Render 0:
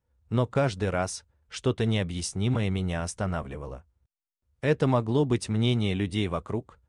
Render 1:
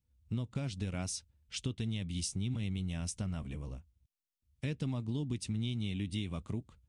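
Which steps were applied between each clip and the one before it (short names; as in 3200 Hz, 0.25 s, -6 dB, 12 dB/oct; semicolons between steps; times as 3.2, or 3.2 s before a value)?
band shelf 830 Hz -12.5 dB 2.6 oct; compressor, threshold -31 dBFS, peak gain reduction 10 dB; gain -1.5 dB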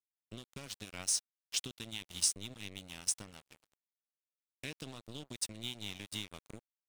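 tilt +3 dB/oct; crossover distortion -42.5 dBFS; gain +1.5 dB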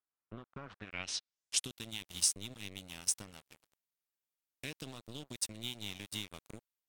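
low-pass sweep 1300 Hz -> 16000 Hz, 0.71–1.78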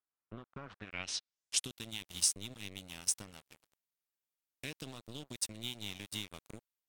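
nothing audible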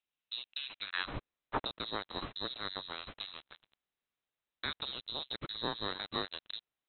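inverted band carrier 4000 Hz; gain +5.5 dB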